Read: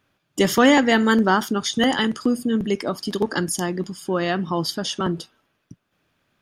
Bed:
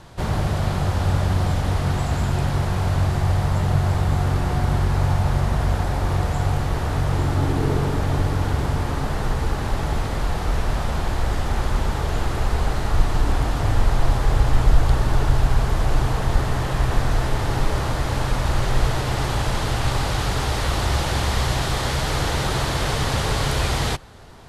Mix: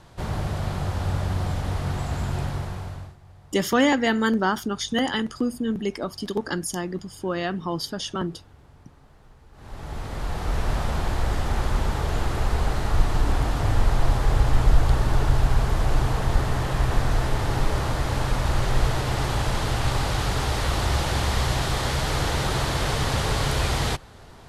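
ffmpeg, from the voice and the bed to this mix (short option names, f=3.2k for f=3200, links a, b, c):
-filter_complex "[0:a]adelay=3150,volume=-4.5dB[a];[1:a]volume=22dB,afade=t=out:st=2.4:d=0.76:silence=0.0630957,afade=t=in:st=9.52:d=1.19:silence=0.0421697[b];[a][b]amix=inputs=2:normalize=0"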